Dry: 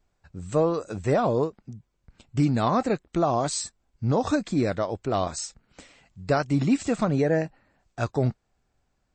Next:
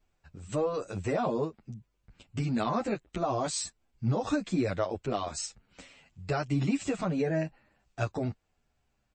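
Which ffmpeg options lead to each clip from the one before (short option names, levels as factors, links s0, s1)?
-filter_complex "[0:a]alimiter=limit=0.133:level=0:latency=1:release=166,equalizer=f=2700:w=2.3:g=5,asplit=2[s0][s1];[s1]adelay=8.9,afreqshift=-0.83[s2];[s0][s2]amix=inputs=2:normalize=1"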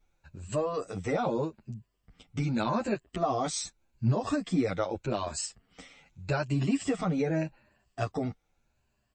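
-af "afftfilt=real='re*pow(10,8/40*sin(2*PI*(1.4*log(max(b,1)*sr/1024/100)/log(2)-(0.83)*(pts-256)/sr)))':imag='im*pow(10,8/40*sin(2*PI*(1.4*log(max(b,1)*sr/1024/100)/log(2)-(0.83)*(pts-256)/sr)))':win_size=1024:overlap=0.75"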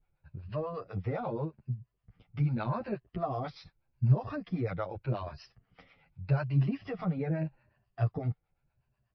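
-filter_complex "[0:a]aresample=11025,aresample=44100,equalizer=f=125:t=o:w=1:g=11,equalizer=f=250:t=o:w=1:g=-6,equalizer=f=4000:t=o:w=1:g=-10,acrossover=split=560[s0][s1];[s0]aeval=exprs='val(0)*(1-0.7/2+0.7/2*cos(2*PI*8.2*n/s))':c=same[s2];[s1]aeval=exprs='val(0)*(1-0.7/2-0.7/2*cos(2*PI*8.2*n/s))':c=same[s3];[s2][s3]amix=inputs=2:normalize=0,volume=0.841"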